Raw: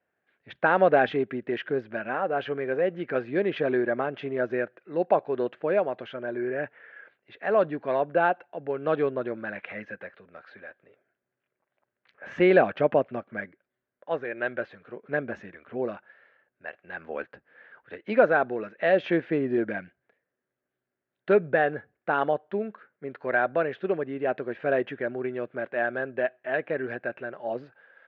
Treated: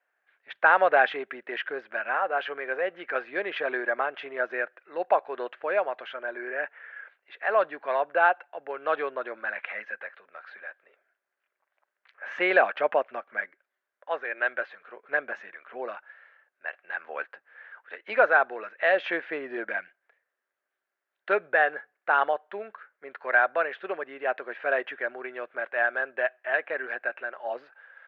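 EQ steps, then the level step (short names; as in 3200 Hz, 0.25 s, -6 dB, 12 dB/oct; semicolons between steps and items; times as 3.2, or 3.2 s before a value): HPF 1000 Hz 12 dB/oct; high shelf 3000 Hz -11 dB; +8.0 dB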